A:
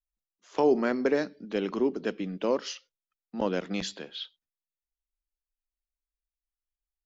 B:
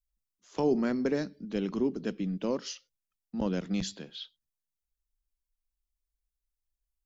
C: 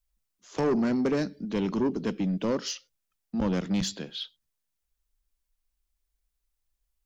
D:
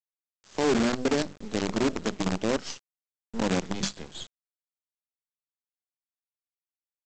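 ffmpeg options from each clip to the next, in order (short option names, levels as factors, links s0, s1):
-af "bass=f=250:g=15,treble=f=4000:g=8,volume=0.447"
-af "asoftclip=type=tanh:threshold=0.0447,volume=2.11"
-af "bandreject=f=50:t=h:w=6,bandreject=f=100:t=h:w=6,bandreject=f=150:t=h:w=6,bandreject=f=200:t=h:w=6,bandreject=f=250:t=h:w=6,aresample=16000,acrusher=bits=5:dc=4:mix=0:aa=0.000001,aresample=44100"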